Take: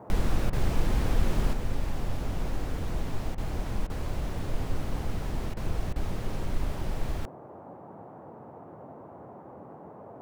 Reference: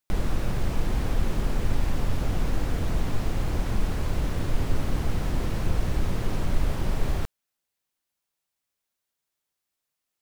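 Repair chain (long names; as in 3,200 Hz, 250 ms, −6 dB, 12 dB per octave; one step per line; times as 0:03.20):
repair the gap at 0:00.50/0:03.35/0:03.87/0:05.54/0:05.93, 27 ms
noise reduction from a noise print 30 dB
level correction +5.5 dB, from 0:01.53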